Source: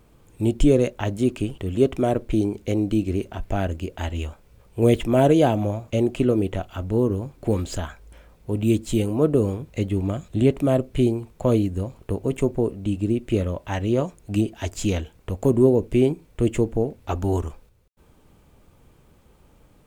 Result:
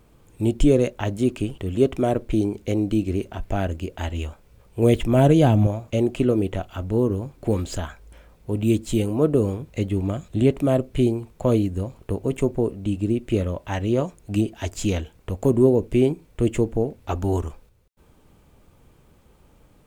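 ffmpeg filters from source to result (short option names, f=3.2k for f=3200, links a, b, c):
-filter_complex "[0:a]asettb=1/sr,asplit=3[a][b][c];[a]atrim=end=4.854[d];[b]atrim=start=4.85:end=5.67,asetpts=PTS-STARTPTS,afade=t=in:d=0.004:c=qsin,afade=t=out:st=0.816:d=0.004:c=qsin,asubboost=boost=10.5:cutoff=240[e];[c]atrim=start=5.666[f];[d][e]acrossfade=d=0.004:c1=hsin:c2=qsin[g];[g][f]acrossfade=d=0.004:c1=qsin:c2=hsin"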